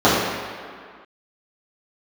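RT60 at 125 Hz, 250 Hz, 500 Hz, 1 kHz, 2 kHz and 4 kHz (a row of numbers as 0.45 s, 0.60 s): 1.5 s, 1.9 s, 1.9 s, 2.1 s, 2.0 s, 1.5 s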